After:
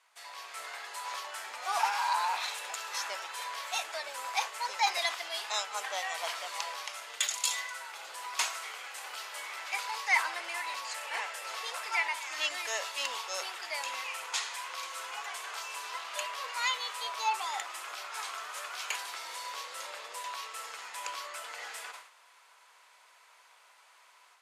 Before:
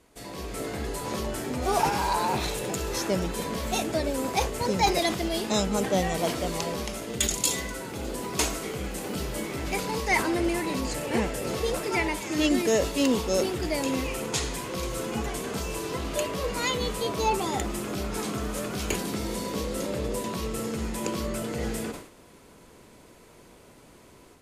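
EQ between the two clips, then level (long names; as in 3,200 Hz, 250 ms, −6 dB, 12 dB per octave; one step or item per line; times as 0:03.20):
high-pass filter 910 Hz 24 dB per octave
high-shelf EQ 7,500 Hz −12 dB
0.0 dB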